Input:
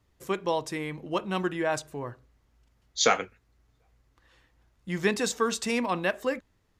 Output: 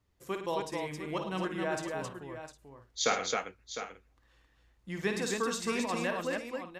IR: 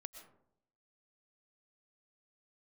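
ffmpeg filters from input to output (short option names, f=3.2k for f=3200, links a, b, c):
-af "aecho=1:1:54|106|267|706|757:0.447|0.266|0.668|0.299|0.119,volume=-7dB"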